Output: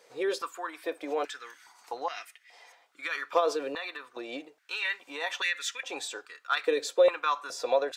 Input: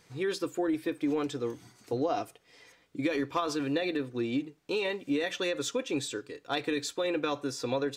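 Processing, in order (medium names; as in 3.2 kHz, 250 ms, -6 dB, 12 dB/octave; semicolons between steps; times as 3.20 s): 3.48–4.29 s: compression 1.5:1, threshold -34 dBFS, peak gain reduction 3.5 dB; step-sequenced high-pass 2.4 Hz 520–1900 Hz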